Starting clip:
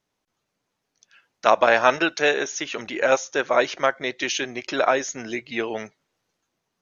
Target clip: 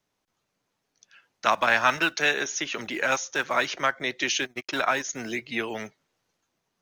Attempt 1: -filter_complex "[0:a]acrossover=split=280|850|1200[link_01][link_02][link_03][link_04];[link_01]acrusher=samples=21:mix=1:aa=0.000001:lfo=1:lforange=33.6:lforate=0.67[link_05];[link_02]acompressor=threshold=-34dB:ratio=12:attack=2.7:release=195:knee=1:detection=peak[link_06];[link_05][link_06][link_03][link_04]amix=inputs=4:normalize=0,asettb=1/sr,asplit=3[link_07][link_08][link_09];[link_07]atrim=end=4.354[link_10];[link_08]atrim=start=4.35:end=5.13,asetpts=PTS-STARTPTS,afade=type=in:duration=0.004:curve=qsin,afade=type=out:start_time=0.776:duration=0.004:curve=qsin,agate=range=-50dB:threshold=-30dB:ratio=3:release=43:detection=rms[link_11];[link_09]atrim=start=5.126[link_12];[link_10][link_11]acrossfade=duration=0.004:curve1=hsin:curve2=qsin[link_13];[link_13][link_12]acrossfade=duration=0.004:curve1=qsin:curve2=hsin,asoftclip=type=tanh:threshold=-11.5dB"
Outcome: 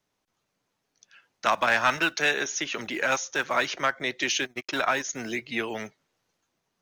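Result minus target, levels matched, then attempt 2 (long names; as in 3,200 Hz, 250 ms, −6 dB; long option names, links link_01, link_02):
soft clipping: distortion +13 dB
-filter_complex "[0:a]acrossover=split=280|850|1200[link_01][link_02][link_03][link_04];[link_01]acrusher=samples=21:mix=1:aa=0.000001:lfo=1:lforange=33.6:lforate=0.67[link_05];[link_02]acompressor=threshold=-34dB:ratio=12:attack=2.7:release=195:knee=1:detection=peak[link_06];[link_05][link_06][link_03][link_04]amix=inputs=4:normalize=0,asettb=1/sr,asplit=3[link_07][link_08][link_09];[link_07]atrim=end=4.354[link_10];[link_08]atrim=start=4.35:end=5.13,asetpts=PTS-STARTPTS,afade=type=in:duration=0.004:curve=qsin,afade=type=out:start_time=0.776:duration=0.004:curve=qsin,agate=range=-50dB:threshold=-30dB:ratio=3:release=43:detection=rms[link_11];[link_09]atrim=start=5.126[link_12];[link_10][link_11]acrossfade=duration=0.004:curve1=hsin:curve2=qsin[link_13];[link_13][link_12]acrossfade=duration=0.004:curve1=qsin:curve2=hsin,asoftclip=type=tanh:threshold=-3.5dB"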